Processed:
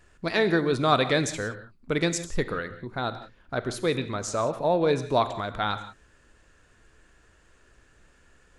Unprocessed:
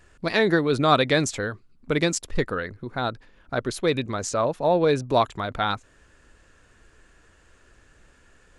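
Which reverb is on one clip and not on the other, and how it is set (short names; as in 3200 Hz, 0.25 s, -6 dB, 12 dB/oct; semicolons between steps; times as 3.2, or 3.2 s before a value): non-linear reverb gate 0.2 s flat, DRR 10.5 dB; gain -3 dB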